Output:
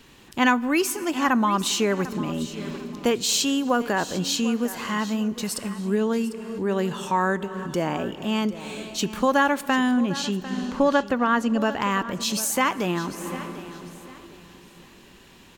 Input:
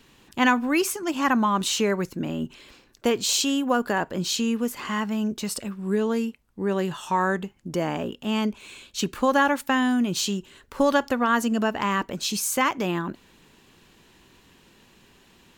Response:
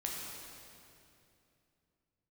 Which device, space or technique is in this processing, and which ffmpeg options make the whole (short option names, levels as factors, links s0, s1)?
ducked reverb: -filter_complex "[0:a]asettb=1/sr,asplit=3[s0][s1][s2];[s0]atrim=end=9.914[s3];[s1]atrim=start=9.91:end=11.6,asetpts=PTS-STARTPTS,afade=t=in:d=0.004:c=qsin,afade=t=out:st=1.686:d=0.004:c=qsin,aemphasis=mode=reproduction:type=50fm[s4];[s2]atrim=start=11.596[s5];[s3][s4]acrossfade=d=0.004:c1=hsin:c2=qsin[s6];[s6][s5]acrossfade=d=0.004:c1=qsin:c2=hsin,asplit=3[s7][s8][s9];[1:a]atrim=start_sample=2205[s10];[s8][s10]afir=irnorm=-1:irlink=0[s11];[s9]apad=whole_len=687034[s12];[s11][s12]sidechaincompress=threshold=0.01:ratio=12:attack=21:release=205,volume=0.75[s13];[s7][s13]amix=inputs=2:normalize=0,aecho=1:1:748|1496|2244:0.178|0.048|0.013"